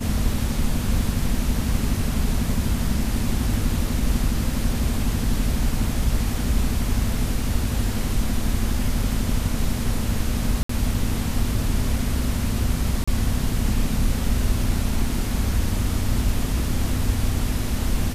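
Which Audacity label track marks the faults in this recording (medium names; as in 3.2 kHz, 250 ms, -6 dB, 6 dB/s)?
10.630000	10.690000	dropout 64 ms
13.040000	13.070000	dropout 35 ms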